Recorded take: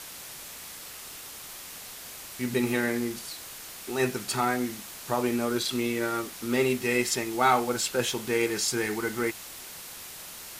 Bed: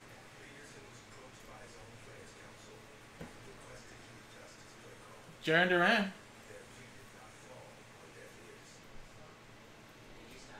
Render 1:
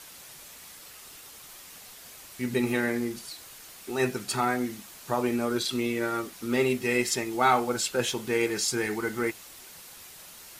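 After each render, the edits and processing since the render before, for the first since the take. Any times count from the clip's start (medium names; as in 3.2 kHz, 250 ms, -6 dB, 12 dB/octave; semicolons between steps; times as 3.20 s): noise reduction 6 dB, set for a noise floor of -43 dBFS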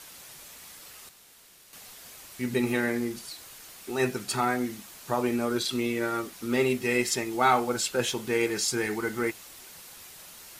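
1.09–1.73 s: room tone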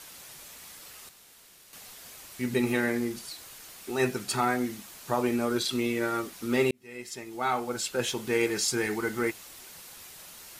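6.71–8.34 s: fade in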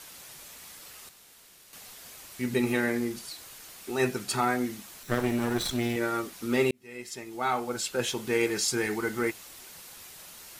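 5.03–5.96 s: comb filter that takes the minimum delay 0.53 ms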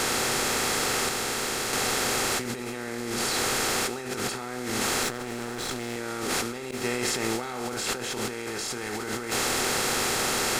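spectral levelling over time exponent 0.4; compressor with a negative ratio -30 dBFS, ratio -1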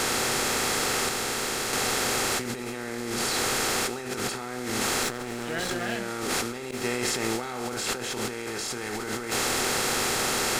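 add bed -5 dB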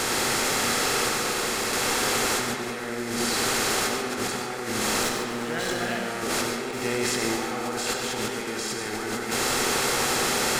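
on a send: tape echo 94 ms, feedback 85%, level -7 dB, low-pass 5.1 kHz; on the sum: gated-style reverb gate 170 ms rising, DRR 6 dB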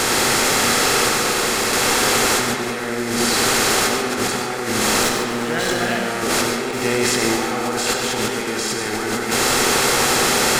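trim +7.5 dB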